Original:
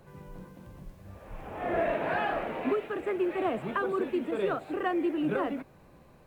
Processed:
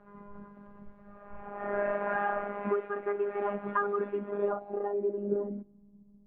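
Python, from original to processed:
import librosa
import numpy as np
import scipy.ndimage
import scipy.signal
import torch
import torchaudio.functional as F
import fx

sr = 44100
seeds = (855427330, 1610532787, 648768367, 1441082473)

y = fx.robotise(x, sr, hz=203.0)
y = fx.filter_sweep_lowpass(y, sr, from_hz=1400.0, to_hz=220.0, start_s=4.09, end_s=5.97, q=1.8)
y = y * librosa.db_to_amplitude(-1.0)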